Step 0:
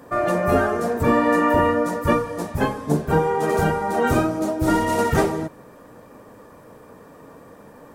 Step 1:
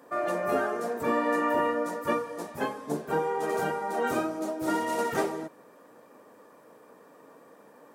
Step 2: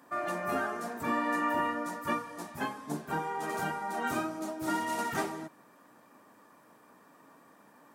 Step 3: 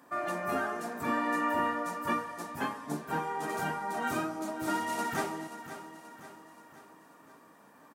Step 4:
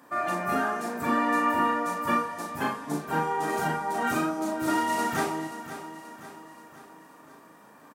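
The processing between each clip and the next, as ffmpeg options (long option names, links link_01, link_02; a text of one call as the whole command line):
ffmpeg -i in.wav -af "highpass=270,volume=-7.5dB" out.wav
ffmpeg -i in.wav -af "equalizer=frequency=480:width=2.1:gain=-12.5,volume=-1dB" out.wav
ffmpeg -i in.wav -af "aecho=1:1:530|1060|1590|2120|2650:0.251|0.131|0.0679|0.0353|0.0184" out.wav
ffmpeg -i in.wav -filter_complex "[0:a]asplit=2[link_01][link_02];[link_02]adelay=38,volume=-4dB[link_03];[link_01][link_03]amix=inputs=2:normalize=0,volume=3.5dB" out.wav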